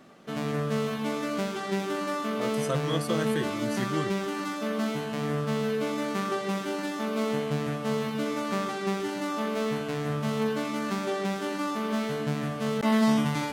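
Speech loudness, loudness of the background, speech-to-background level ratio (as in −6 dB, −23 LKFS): −33.5 LKFS, −29.5 LKFS, −4.0 dB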